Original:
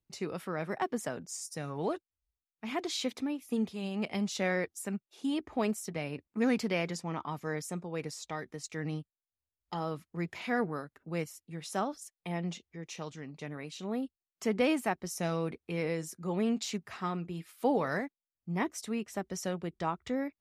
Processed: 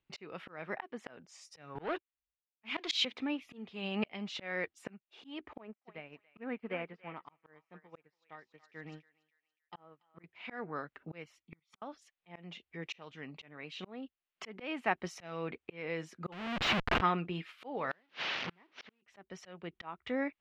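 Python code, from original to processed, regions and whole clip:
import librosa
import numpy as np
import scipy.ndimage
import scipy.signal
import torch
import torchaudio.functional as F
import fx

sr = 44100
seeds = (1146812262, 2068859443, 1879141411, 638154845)

y = fx.chain(x, sr, fx.leveller(passes=2),
    fx.high_shelf(hz=2200.0, db=9.5),
    fx.band_widen(depth_pct=70), at=(1.75, 3.05))
y = fx.chain(y, sr, fx.env_lowpass_down(base_hz=1700.0, full_db=-29.5),
    fx.echo_thinned(ms=284, feedback_pct=48, hz=1200.0, wet_db=-5.5),
    fx.upward_expand(threshold_db=-45.0, expansion=2.5), at=(5.53, 10.24))
y = fx.chain(y, sr, fx.level_steps(step_db=14),
    fx.comb(ms=0.9, depth=0.82),
    fx.gate_flip(shuts_db=-34.0, range_db=-35), at=(11.42, 11.82))
y = fx.chain(y, sr, fx.comb(ms=5.7, depth=0.81),
    fx.schmitt(flips_db=-38.5), at=(16.32, 17.01))
y = fx.chain(y, sr, fx.delta_mod(bps=32000, step_db=-35.0),
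    fx.highpass(hz=130.0, slope=24),
    fx.gate_flip(shuts_db=-30.0, range_db=-37), at=(17.91, 19.02))
y = fx.curve_eq(y, sr, hz=(100.0, 2900.0, 10000.0), db=(0, 13, -19))
y = fx.auto_swell(y, sr, attack_ms=547.0)
y = F.gain(torch.from_numpy(y), -2.5).numpy()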